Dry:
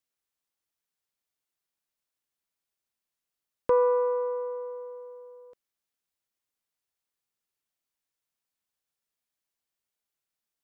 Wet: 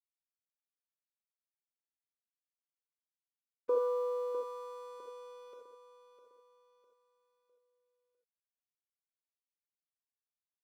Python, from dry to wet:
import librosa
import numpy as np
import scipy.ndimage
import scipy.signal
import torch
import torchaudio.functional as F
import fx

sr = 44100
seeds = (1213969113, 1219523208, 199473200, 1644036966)

y = fx.bin_compress(x, sr, power=0.6)
y = fx.highpass(y, sr, hz=550.0, slope=6)
y = fx.spec_gate(y, sr, threshold_db=-25, keep='strong')
y = scipy.signal.sosfilt(scipy.signal.butter(2, 1600.0, 'lowpass', fs=sr, output='sos'), y)
y = fx.peak_eq(y, sr, hz=920.0, db=-13.5, octaves=1.1)
y = np.sign(y) * np.maximum(np.abs(y) - 10.0 ** (-58.0 / 20.0), 0.0)
y = fx.echo_feedback(y, sr, ms=654, feedback_pct=41, wet_db=-10.0)
y = fx.rev_gated(y, sr, seeds[0], gate_ms=100, shape='rising', drr_db=0.5)